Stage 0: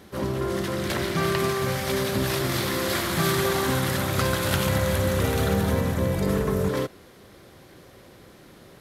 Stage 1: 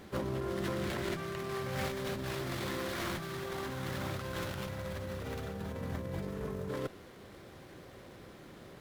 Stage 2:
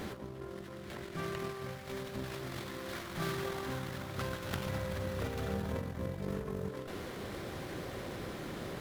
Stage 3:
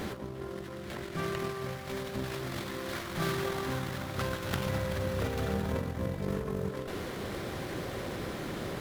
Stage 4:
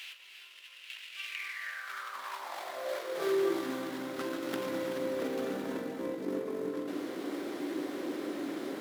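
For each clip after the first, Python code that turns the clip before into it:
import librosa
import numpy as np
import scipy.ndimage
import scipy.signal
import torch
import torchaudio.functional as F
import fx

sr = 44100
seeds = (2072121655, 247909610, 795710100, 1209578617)

y1 = fx.over_compress(x, sr, threshold_db=-30.0, ratio=-1.0)
y1 = fx.running_max(y1, sr, window=5)
y1 = F.gain(torch.from_numpy(y1), -7.5).numpy()
y2 = fx.over_compress(y1, sr, threshold_db=-42.0, ratio=-0.5)
y2 = F.gain(torch.from_numpy(y2), 4.5).numpy()
y3 = y2 + 10.0 ** (-16.0 / 20.0) * np.pad(y2, (int(380 * sr / 1000.0), 0))[:len(y2)]
y3 = F.gain(torch.from_numpy(y3), 4.5).numpy()
y4 = fx.low_shelf(y3, sr, hz=210.0, db=-7.5)
y4 = fx.rev_gated(y4, sr, seeds[0], gate_ms=370, shape='rising', drr_db=4.5)
y4 = fx.filter_sweep_highpass(y4, sr, from_hz=2700.0, to_hz=290.0, start_s=1.23, end_s=3.66, q=6.3)
y4 = F.gain(torch.from_numpy(y4), -5.5).numpy()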